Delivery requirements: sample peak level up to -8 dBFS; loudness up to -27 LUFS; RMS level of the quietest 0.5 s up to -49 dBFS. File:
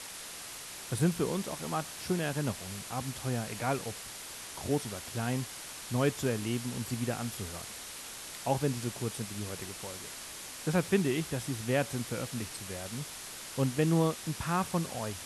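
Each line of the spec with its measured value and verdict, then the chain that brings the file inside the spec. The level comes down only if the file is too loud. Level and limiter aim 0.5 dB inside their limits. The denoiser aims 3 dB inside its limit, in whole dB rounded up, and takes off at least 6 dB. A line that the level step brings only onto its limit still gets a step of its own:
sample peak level -14.0 dBFS: pass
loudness -34.0 LUFS: pass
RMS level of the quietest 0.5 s -44 dBFS: fail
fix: noise reduction 8 dB, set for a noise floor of -44 dBFS

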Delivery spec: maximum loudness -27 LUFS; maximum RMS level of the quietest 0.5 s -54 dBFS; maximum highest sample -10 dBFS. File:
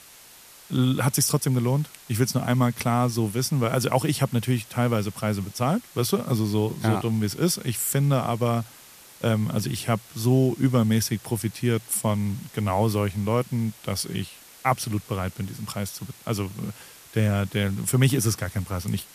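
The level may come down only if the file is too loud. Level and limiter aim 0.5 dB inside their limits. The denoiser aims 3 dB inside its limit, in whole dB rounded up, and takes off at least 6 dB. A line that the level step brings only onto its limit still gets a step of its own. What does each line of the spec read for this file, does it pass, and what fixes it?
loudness -25.0 LUFS: fail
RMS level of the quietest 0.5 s -49 dBFS: fail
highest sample -7.0 dBFS: fail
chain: noise reduction 6 dB, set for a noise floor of -49 dBFS; trim -2.5 dB; peak limiter -10.5 dBFS

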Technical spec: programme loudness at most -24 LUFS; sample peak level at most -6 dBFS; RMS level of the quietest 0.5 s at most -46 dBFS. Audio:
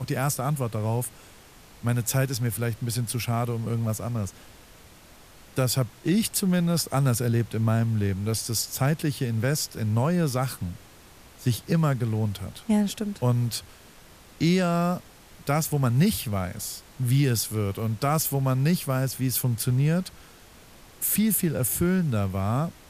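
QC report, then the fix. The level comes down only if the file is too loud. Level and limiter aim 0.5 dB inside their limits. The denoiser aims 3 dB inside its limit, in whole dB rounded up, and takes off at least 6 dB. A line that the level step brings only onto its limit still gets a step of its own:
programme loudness -26.0 LUFS: pass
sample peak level -10.5 dBFS: pass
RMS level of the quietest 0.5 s -50 dBFS: pass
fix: none needed

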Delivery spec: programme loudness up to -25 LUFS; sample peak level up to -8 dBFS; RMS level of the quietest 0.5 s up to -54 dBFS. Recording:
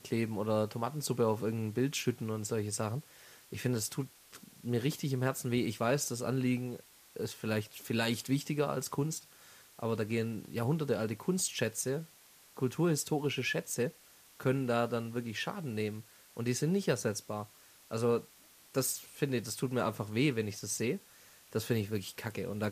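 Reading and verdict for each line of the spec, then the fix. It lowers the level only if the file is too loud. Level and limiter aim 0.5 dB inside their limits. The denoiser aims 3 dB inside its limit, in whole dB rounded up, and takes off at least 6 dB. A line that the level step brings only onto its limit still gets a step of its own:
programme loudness -34.5 LUFS: pass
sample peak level -16.5 dBFS: pass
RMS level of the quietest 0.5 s -60 dBFS: pass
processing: none needed

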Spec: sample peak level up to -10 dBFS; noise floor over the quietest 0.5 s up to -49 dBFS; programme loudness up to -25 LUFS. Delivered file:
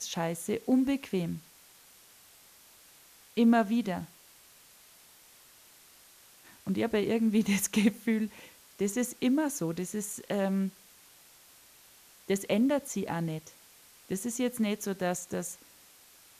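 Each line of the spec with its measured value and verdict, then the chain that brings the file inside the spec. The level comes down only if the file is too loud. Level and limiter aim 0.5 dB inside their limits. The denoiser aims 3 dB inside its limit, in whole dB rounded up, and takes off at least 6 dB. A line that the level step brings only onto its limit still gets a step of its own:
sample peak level -13.0 dBFS: pass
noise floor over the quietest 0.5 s -57 dBFS: pass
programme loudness -30.5 LUFS: pass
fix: none needed

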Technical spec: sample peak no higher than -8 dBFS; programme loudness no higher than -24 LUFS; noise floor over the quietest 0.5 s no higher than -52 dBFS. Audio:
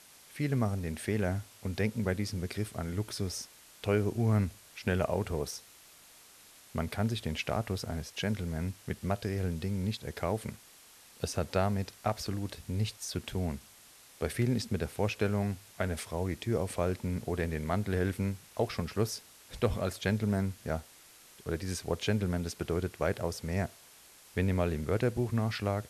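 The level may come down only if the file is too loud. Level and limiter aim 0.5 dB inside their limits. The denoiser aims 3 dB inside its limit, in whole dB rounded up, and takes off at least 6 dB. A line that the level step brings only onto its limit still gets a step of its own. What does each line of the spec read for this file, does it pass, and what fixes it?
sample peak -16.0 dBFS: pass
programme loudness -33.5 LUFS: pass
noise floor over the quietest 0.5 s -57 dBFS: pass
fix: none needed

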